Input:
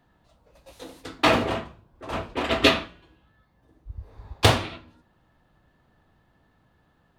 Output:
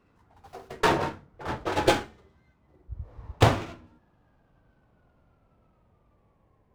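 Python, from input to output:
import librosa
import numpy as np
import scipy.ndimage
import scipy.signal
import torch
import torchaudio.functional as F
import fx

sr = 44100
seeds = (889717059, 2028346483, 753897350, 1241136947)

y = fx.speed_glide(x, sr, from_pct=154, to_pct=59)
y = fx.high_shelf(y, sr, hz=2500.0, db=-10.0)
y = fx.running_max(y, sr, window=5)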